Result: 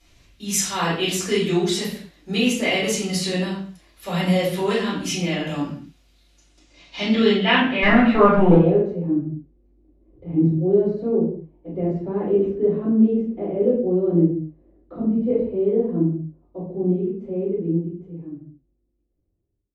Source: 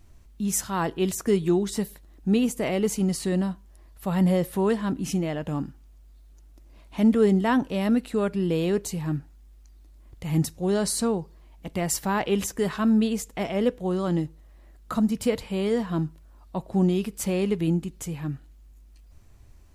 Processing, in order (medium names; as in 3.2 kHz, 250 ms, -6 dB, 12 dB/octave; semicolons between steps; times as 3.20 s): fade out at the end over 4.43 s; frequency weighting D; 7.82–8.55 s: waveshaping leveller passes 3; low-pass sweep 13 kHz -> 390 Hz, 6.23–9.09 s; reverberation, pre-delay 4 ms, DRR -11 dB; trim -11.5 dB